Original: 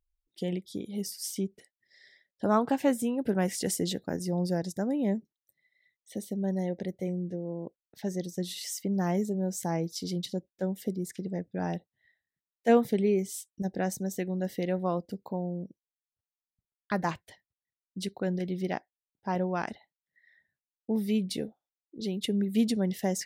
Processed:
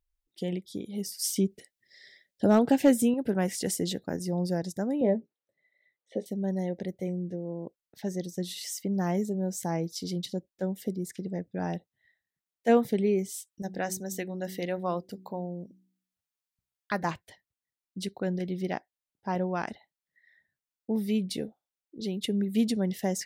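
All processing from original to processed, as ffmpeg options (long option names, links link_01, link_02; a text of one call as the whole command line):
ffmpeg -i in.wav -filter_complex "[0:a]asettb=1/sr,asplit=3[link_01][link_02][link_03];[link_01]atrim=end=1.194[link_04];[link_02]atrim=start=1.19:end=3.14,asetpts=PTS-STARTPTS,afade=type=in:duration=0.004:curve=qsin,afade=type=out:start_time=1.946:duration=0.004:curve=qsin,equalizer=frequency=1100:width_type=o:width=0.75:gain=-13,acontrast=53,asoftclip=type=hard:threshold=-12dB[link_05];[link_03]atrim=start=3.136[link_06];[link_04][link_05]acrossfade=duration=0.004:curve1=hsin:curve2=qsin[link_07];[link_07][link_06]acrossfade=duration=0.004:curve1=qsin:curve2=hsin,asettb=1/sr,asplit=3[link_08][link_09][link_10];[link_08]atrim=end=5.014[link_11];[link_09]atrim=start=5.01:end=6.26,asetpts=PTS-STARTPTS,afade=type=in:duration=0.004:curve=qsin,afade=type=out:start_time=1.246:duration=0.004:curve=qsin,highpass=130,lowpass=2900,equalizer=frequency=520:width=1.4:gain=9.5,asplit=2[link_12][link_13];[link_13]adelay=17,volume=-10dB[link_14];[link_12][link_14]amix=inputs=2:normalize=0,atrim=end_sample=55125[link_15];[link_10]atrim=start=6.256[link_16];[link_11][link_15]acrossfade=duration=0.004:curve1=hsin:curve2=qsin[link_17];[link_17][link_16]acrossfade=duration=0.004:curve1=qsin:curve2=hsin,asettb=1/sr,asplit=3[link_18][link_19][link_20];[link_18]atrim=end=13.474[link_21];[link_19]atrim=start=13.47:end=17.03,asetpts=PTS-STARTPTS,afade=type=in:duration=0.004:curve=qsin,afade=type=out:start_time=3.556:duration=0.004:curve=qsin,tiltshelf=frequency=660:gain=-3.5,bandreject=frequency=62.44:width_type=h:width=4,bandreject=frequency=124.88:width_type=h:width=4,bandreject=frequency=187.32:width_type=h:width=4,bandreject=frequency=249.76:width_type=h:width=4,bandreject=frequency=312.2:width_type=h:width=4,bandreject=frequency=374.64:width_type=h:width=4[link_22];[link_20]atrim=start=17.026[link_23];[link_21][link_22]acrossfade=duration=0.004:curve1=hsin:curve2=qsin[link_24];[link_24][link_23]acrossfade=duration=0.004:curve1=qsin:curve2=hsin" out.wav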